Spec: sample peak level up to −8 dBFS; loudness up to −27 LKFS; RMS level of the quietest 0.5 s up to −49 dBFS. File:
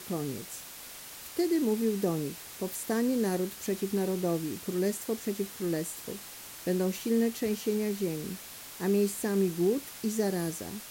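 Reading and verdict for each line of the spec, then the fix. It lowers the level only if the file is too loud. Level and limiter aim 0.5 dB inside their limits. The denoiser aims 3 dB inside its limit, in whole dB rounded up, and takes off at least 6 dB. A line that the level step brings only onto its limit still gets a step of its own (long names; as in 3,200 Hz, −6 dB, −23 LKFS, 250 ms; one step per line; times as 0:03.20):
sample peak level −16.0 dBFS: in spec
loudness −31.0 LKFS: in spec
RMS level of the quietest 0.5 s −46 dBFS: out of spec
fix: broadband denoise 6 dB, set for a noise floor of −46 dBFS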